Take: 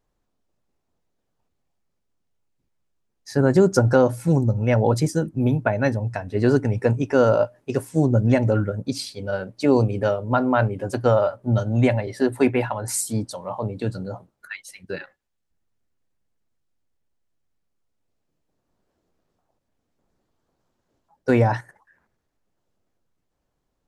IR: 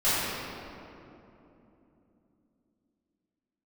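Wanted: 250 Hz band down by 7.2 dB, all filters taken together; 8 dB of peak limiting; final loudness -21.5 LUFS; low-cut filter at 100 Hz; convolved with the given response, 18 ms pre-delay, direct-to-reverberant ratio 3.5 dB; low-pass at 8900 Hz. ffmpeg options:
-filter_complex "[0:a]highpass=100,lowpass=8.9k,equalizer=f=250:t=o:g=-9,alimiter=limit=-14dB:level=0:latency=1,asplit=2[a][b];[1:a]atrim=start_sample=2205,adelay=18[c];[b][c]afir=irnorm=-1:irlink=0,volume=-19dB[d];[a][d]amix=inputs=2:normalize=0,volume=4dB"

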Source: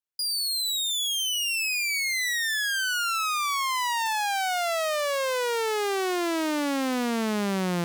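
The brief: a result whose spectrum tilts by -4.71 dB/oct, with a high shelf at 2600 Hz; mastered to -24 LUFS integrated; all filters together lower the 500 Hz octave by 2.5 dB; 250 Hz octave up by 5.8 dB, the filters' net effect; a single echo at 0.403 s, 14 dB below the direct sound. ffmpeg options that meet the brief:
-af "equalizer=f=250:t=o:g=9,equalizer=f=500:t=o:g=-6,highshelf=f=2.6k:g=-7.5,aecho=1:1:403:0.2,volume=3dB"

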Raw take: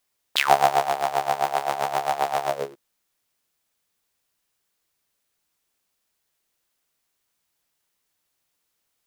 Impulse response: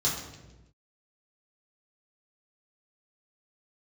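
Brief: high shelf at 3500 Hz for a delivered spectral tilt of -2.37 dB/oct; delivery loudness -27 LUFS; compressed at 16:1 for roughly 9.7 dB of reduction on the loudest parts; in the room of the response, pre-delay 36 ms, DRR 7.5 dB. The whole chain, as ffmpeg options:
-filter_complex "[0:a]highshelf=f=3.5k:g=-3.5,acompressor=threshold=-21dB:ratio=16,asplit=2[a][b];[1:a]atrim=start_sample=2205,adelay=36[c];[b][c]afir=irnorm=-1:irlink=0,volume=-16.5dB[d];[a][d]amix=inputs=2:normalize=0,volume=0.5dB"

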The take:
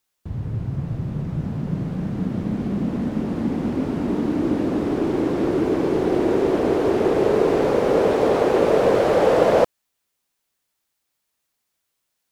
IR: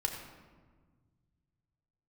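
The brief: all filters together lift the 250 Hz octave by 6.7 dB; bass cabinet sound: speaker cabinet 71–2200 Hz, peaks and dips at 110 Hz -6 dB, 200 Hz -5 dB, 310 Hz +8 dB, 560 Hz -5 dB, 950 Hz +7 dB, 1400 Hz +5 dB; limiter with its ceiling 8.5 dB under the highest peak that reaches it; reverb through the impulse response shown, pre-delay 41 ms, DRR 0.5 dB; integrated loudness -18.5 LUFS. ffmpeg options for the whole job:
-filter_complex "[0:a]equalizer=f=250:t=o:g=4,alimiter=limit=-10dB:level=0:latency=1,asplit=2[a][b];[1:a]atrim=start_sample=2205,adelay=41[c];[b][c]afir=irnorm=-1:irlink=0,volume=-4dB[d];[a][d]amix=inputs=2:normalize=0,highpass=f=71:w=0.5412,highpass=f=71:w=1.3066,equalizer=f=110:t=q:w=4:g=-6,equalizer=f=200:t=q:w=4:g=-5,equalizer=f=310:t=q:w=4:g=8,equalizer=f=560:t=q:w=4:g=-5,equalizer=f=950:t=q:w=4:g=7,equalizer=f=1.4k:t=q:w=4:g=5,lowpass=f=2.2k:w=0.5412,lowpass=f=2.2k:w=1.3066,volume=-2.5dB"

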